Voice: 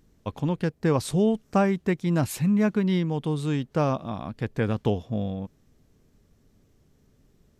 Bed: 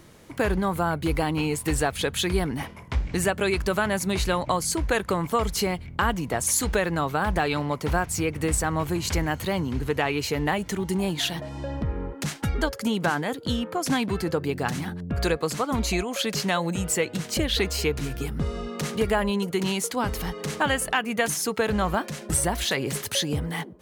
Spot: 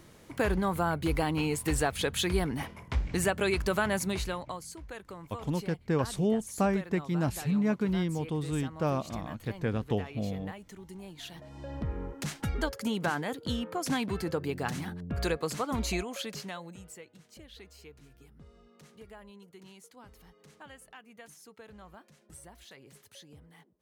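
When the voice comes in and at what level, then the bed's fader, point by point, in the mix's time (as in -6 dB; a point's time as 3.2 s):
5.05 s, -5.5 dB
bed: 4.01 s -4 dB
4.76 s -19.5 dB
11.14 s -19.5 dB
11.84 s -6 dB
15.96 s -6 dB
17.14 s -26.5 dB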